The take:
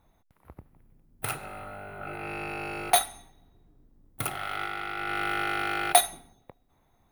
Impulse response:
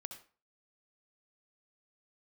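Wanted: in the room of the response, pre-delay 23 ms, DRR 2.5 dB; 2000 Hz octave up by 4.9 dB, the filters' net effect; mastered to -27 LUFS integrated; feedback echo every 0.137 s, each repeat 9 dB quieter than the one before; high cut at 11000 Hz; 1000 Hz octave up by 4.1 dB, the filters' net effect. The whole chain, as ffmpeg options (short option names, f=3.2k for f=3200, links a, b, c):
-filter_complex "[0:a]lowpass=11k,equalizer=f=1k:t=o:g=5.5,equalizer=f=2k:t=o:g=4.5,aecho=1:1:137|274|411|548:0.355|0.124|0.0435|0.0152,asplit=2[a][b];[1:a]atrim=start_sample=2205,adelay=23[c];[b][c]afir=irnorm=-1:irlink=0,volume=1.5dB[d];[a][d]amix=inputs=2:normalize=0,volume=-3.5dB"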